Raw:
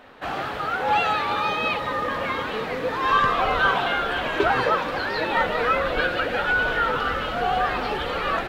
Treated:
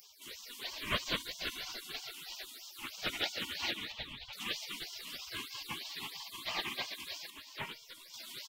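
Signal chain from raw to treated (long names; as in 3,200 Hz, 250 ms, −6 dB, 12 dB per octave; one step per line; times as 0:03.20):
0:03.71–0:04.33: three-way crossover with the lows and the highs turned down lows −24 dB, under 170 Hz, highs −21 dB, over 3,400 Hz
multi-tap delay 46/73/141/207/407 ms −11.5/−17/−10/−7.5/−17.5 dB
all-pass phaser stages 6, 3.1 Hz, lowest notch 260–1,000 Hz
dynamic equaliser 920 Hz, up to +5 dB, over −38 dBFS, Q 2.6
gate on every frequency bin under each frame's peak −30 dB weak
0:07.30–0:08.14: tuned comb filter 470 Hz, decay 0.32 s, harmonics all, mix 60%
upward compression, threshold −55 dBFS
level +6.5 dB
AAC 192 kbit/s 48,000 Hz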